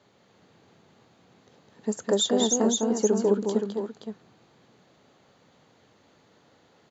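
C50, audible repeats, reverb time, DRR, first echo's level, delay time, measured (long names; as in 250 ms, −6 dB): no reverb audible, 3, no reverb audible, no reverb audible, −4.0 dB, 207 ms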